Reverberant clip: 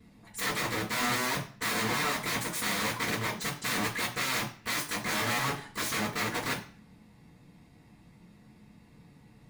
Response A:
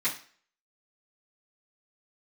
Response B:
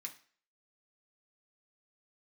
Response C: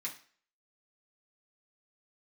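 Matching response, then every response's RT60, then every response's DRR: A; 0.45 s, 0.45 s, 0.45 s; -13.0 dB, -0.5 dB, -5.5 dB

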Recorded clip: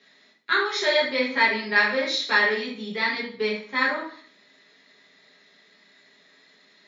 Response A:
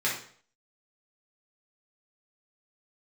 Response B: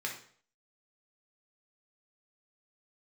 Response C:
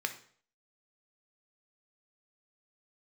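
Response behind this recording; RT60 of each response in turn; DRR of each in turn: A; 0.50 s, 0.50 s, 0.50 s; -6.5 dB, -1.0 dB, 6.0 dB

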